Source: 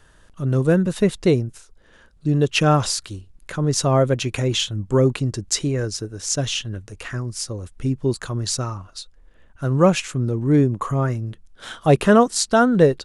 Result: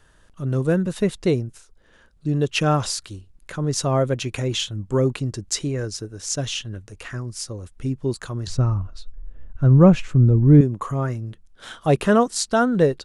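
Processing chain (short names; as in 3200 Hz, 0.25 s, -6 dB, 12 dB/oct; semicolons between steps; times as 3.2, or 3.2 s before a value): 8.47–10.61 RIAA curve playback; gain -3 dB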